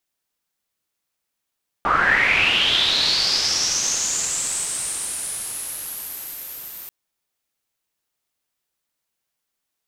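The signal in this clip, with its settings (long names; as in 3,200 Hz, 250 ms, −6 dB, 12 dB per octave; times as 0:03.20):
filter sweep on noise white, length 5.04 s lowpass, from 1,100 Hz, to 14,000 Hz, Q 7.1, linear, gain ramp −26.5 dB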